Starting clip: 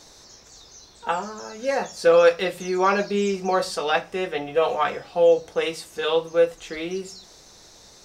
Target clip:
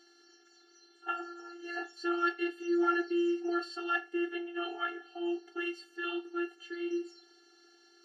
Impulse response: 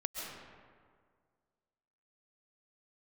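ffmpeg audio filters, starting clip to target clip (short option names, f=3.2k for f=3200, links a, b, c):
-filter_complex "[0:a]afftfilt=real='hypot(re,im)*cos(PI*b)':imag='0':win_size=512:overlap=0.75,acrossover=split=300 4000:gain=0.0708 1 0.0794[a][b][c];[a][b][c]amix=inputs=3:normalize=0,afftfilt=real='re*eq(mod(floor(b*sr/1024/230),2),1)':imag='im*eq(mod(floor(b*sr/1024/230),2),1)':win_size=1024:overlap=0.75"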